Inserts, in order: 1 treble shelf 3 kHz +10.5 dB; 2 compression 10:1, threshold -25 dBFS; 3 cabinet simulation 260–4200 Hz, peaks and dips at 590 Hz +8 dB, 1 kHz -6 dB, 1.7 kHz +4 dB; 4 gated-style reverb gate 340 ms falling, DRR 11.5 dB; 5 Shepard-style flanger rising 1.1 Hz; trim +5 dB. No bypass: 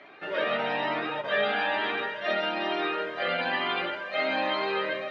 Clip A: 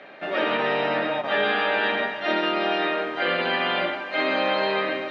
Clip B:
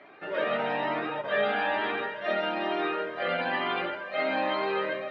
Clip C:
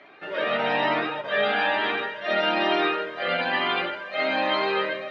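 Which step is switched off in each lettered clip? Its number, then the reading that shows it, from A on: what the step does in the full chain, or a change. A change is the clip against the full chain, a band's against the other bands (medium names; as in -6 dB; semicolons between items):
5, 250 Hz band +2.0 dB; 1, 4 kHz band -5.0 dB; 2, mean gain reduction 3.0 dB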